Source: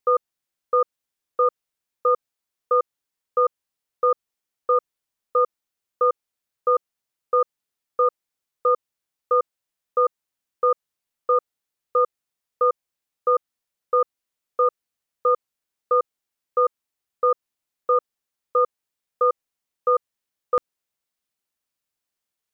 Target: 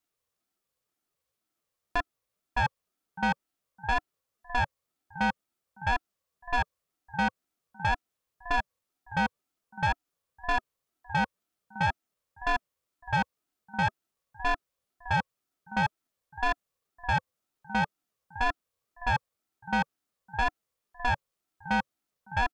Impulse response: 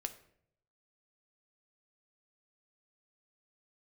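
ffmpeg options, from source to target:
-af "areverse,equalizer=frequency=210:width_type=o:width=0.8:gain=12.5,aecho=1:1:609|1218:0.075|0.0187,asoftclip=type=tanh:threshold=-21.5dB,equalizer=frequency=820:width_type=o:width=0.26:gain=13.5,aeval=exprs='val(0)*sin(2*PI*400*n/s+400*0.3/2*sin(2*PI*2*n/s))':channel_layout=same,volume=1.5dB"

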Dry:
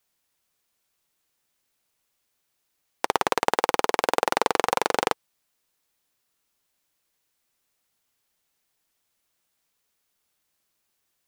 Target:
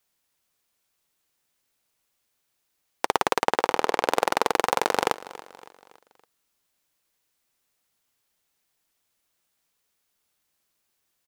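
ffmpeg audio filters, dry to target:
ffmpeg -i in.wav -filter_complex "[0:a]asettb=1/sr,asplit=3[link_01][link_02][link_03];[link_01]atrim=end=3.434[link_04];[link_02]atrim=start=3.43:end=4.09,asetpts=PTS-STARTPTS,afade=type=in:duration=0.004:curve=qsin,afade=type=out:start_time=0.656:duration=0.004:curve=qsin,highshelf=frequency=6800:gain=-8[link_05];[link_03]atrim=start=4.086[link_06];[link_04][link_05]acrossfade=duration=0.004:curve1=hsin:curve2=qsin[link_07];[link_07][link_06]acrossfade=duration=0.004:curve1=qsin:curve2=hsin,asplit=2[link_08][link_09];[link_09]aecho=0:1:281|562|843|1124:0.126|0.0579|0.0266|0.0123[link_10];[link_08][link_10]amix=inputs=2:normalize=0" out.wav

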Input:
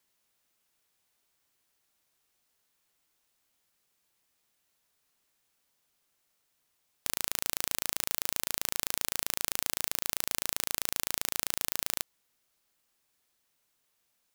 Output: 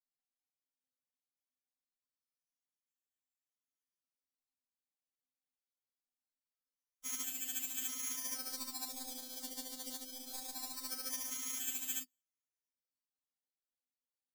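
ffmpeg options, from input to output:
ffmpeg -i in.wav -filter_complex "[0:a]afftfilt=real='real(if(lt(b,272),68*(eq(floor(b/68),0)*1+eq(floor(b/68),1)*3+eq(floor(b/68),2)*0+eq(floor(b/68),3)*2)+mod(b,68),b),0)':imag='imag(if(lt(b,272),68*(eq(floor(b/68),0)*1+eq(floor(b/68),1)*3+eq(floor(b/68),2)*0+eq(floor(b/68),3)*2)+mod(b,68),b),0)':win_size=2048:overlap=0.75,afftdn=noise_reduction=31:noise_floor=-55,bandreject=frequency=2700:width=16,aecho=1:1:5.1:0.99,acrossover=split=89|3500[link_01][link_02][link_03];[link_01]acompressor=threshold=-58dB:ratio=4[link_04];[link_02]acompressor=threshold=-42dB:ratio=4[link_05];[link_03]acompressor=threshold=-43dB:ratio=4[link_06];[link_04][link_05][link_06]amix=inputs=3:normalize=0,alimiter=level_in=1.5dB:limit=-24dB:level=0:latency=1:release=95,volume=-1.5dB,asplit=3[link_07][link_08][link_09];[link_07]bandpass=frequency=270:width_type=q:width=8,volume=0dB[link_10];[link_08]bandpass=frequency=2290:width_type=q:width=8,volume=-6dB[link_11];[link_09]bandpass=frequency=3010:width_type=q:width=8,volume=-9dB[link_12];[link_10][link_11][link_12]amix=inputs=3:normalize=0,acrusher=samples=13:mix=1:aa=0.000001:lfo=1:lforange=7.8:lforate=0.23,aexciter=amount=10.6:drive=1.9:freq=3400,aeval=exprs='val(0)*sin(2*PI*21*n/s)':channel_layout=same,afftfilt=real='re*3.46*eq(mod(b,12),0)':imag='im*3.46*eq(mod(b,12),0)':win_size=2048:overlap=0.75,volume=17dB" out.wav

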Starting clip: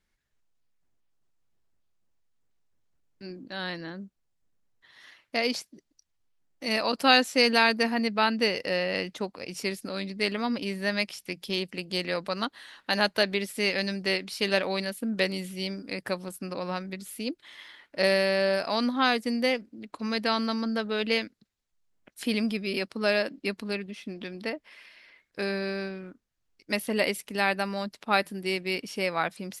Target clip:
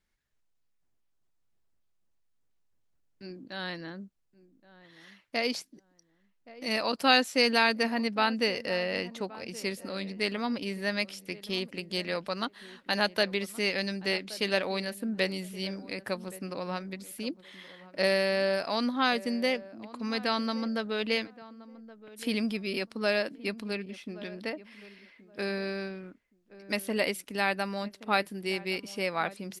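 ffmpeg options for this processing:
ffmpeg -i in.wav -filter_complex "[0:a]asplit=2[link_01][link_02];[link_02]adelay=1123,lowpass=frequency=1100:poles=1,volume=-17dB,asplit=2[link_03][link_04];[link_04]adelay=1123,lowpass=frequency=1100:poles=1,volume=0.25[link_05];[link_01][link_03][link_05]amix=inputs=3:normalize=0,volume=-2.5dB" out.wav

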